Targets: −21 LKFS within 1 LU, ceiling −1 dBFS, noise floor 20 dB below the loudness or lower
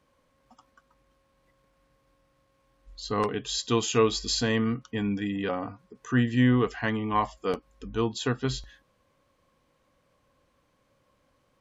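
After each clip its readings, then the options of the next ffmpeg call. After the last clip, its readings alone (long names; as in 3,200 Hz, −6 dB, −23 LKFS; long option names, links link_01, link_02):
integrated loudness −27.5 LKFS; sample peak −11.5 dBFS; target loudness −21.0 LKFS
→ -af "volume=6.5dB"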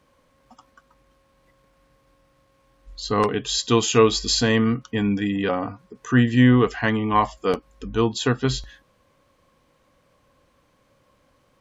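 integrated loudness −21.0 LKFS; sample peak −5.0 dBFS; background noise floor −63 dBFS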